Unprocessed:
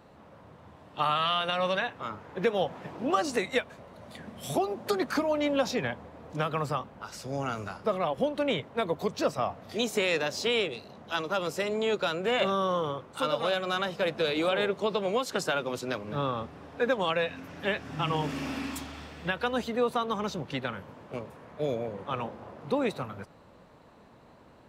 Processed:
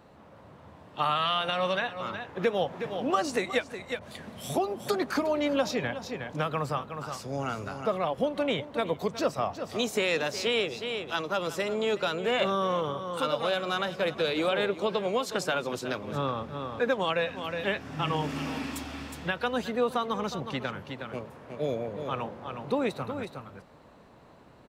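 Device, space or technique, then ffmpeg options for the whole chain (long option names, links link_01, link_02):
ducked delay: -filter_complex "[0:a]asplit=3[link_01][link_02][link_03];[link_02]adelay=365,volume=-6dB[link_04];[link_03]apad=whole_len=1104499[link_05];[link_04][link_05]sidechaincompress=threshold=-35dB:ratio=8:attack=6.6:release=250[link_06];[link_01][link_06]amix=inputs=2:normalize=0,asettb=1/sr,asplit=3[link_07][link_08][link_09];[link_07]atrim=end=3.994[link_10];[link_08]atrim=start=3.99:end=4.43,asetpts=PTS-STARTPTS,afade=type=in:duration=0.004:curve=qsin,afade=type=out:start_time=0.436:duration=0.004:curve=qsin,adynamicequalizer=threshold=0.00126:dfrequency=2000:dqfactor=0.7:tfrequency=2000:tqfactor=0.7:attack=5:release=100:ratio=0.375:range=2.5:mode=boostabove:tftype=highshelf[link_11];[link_09]atrim=start=4.426[link_12];[link_10][link_11]acrossfade=duration=0.004:curve1=hsin:curve2=qsin[link_13];[link_13][link_12]acrossfade=duration=0.004:curve1=qsin:curve2=hsin"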